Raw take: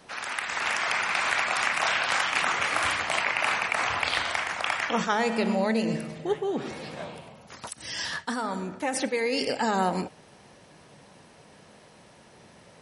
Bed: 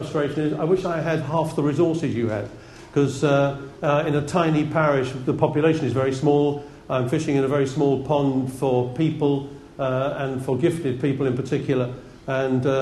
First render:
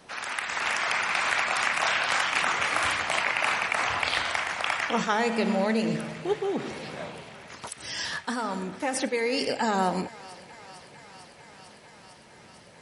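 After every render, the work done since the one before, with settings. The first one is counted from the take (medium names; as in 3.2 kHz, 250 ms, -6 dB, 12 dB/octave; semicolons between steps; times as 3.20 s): thinning echo 450 ms, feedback 85%, high-pass 460 Hz, level -19.5 dB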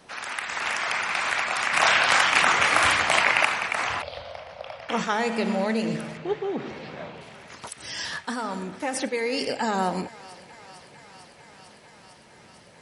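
1.73–3.45 s: gain +6 dB; 4.02–4.89 s: FFT filter 110 Hz 0 dB, 230 Hz -10 dB, 360 Hz -18 dB, 550 Hz +6 dB, 850 Hz -11 dB, 1.8 kHz -20 dB, 3.1 kHz -13 dB, 5.1 kHz -12 dB, 7.3 kHz -30 dB, 13 kHz -22 dB; 6.17–7.21 s: distance through air 130 m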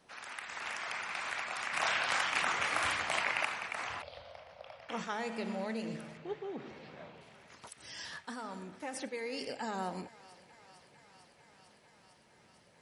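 trim -12.5 dB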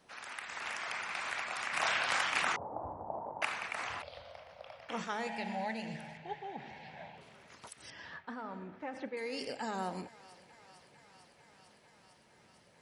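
2.56–3.42 s: Chebyshev low-pass 920 Hz, order 5; 5.27–7.18 s: FFT filter 180 Hz 0 dB, 310 Hz -9 dB, 510 Hz -7 dB, 840 Hz +10 dB, 1.2 kHz -13 dB, 1.7 kHz +5 dB, 11 kHz -5 dB; 7.90–9.17 s: low-pass 2.2 kHz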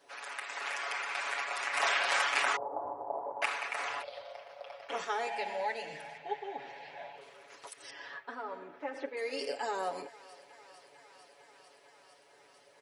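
resonant low shelf 270 Hz -13.5 dB, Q 1.5; comb 7.1 ms, depth 84%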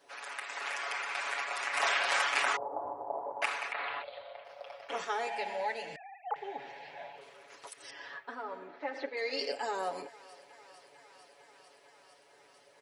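3.72–4.45 s: elliptic low-pass 4.1 kHz; 5.96–6.36 s: formants replaced by sine waves; 8.68–9.52 s: cabinet simulation 180–7000 Hz, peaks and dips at 730 Hz +4 dB, 2 kHz +5 dB, 4.2 kHz +10 dB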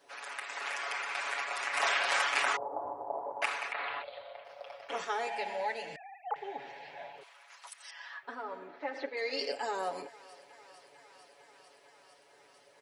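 7.23–8.23 s: high-pass 810 Hz 24 dB/octave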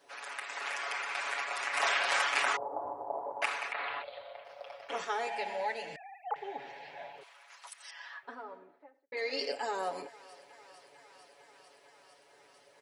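7.99–9.12 s: studio fade out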